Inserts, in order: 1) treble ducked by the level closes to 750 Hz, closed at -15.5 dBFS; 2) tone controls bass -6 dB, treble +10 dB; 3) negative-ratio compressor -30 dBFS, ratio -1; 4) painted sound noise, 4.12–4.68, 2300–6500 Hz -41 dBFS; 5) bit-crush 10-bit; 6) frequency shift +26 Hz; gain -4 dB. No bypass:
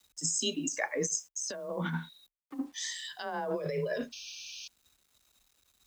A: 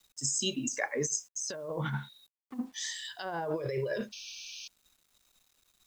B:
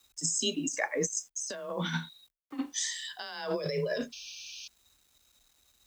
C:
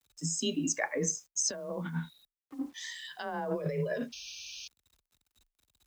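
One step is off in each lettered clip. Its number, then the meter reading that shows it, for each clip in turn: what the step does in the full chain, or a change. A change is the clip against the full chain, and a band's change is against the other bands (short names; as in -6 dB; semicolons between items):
6, 125 Hz band +2.5 dB; 1, 1 kHz band -2.0 dB; 2, 125 Hz band +3.5 dB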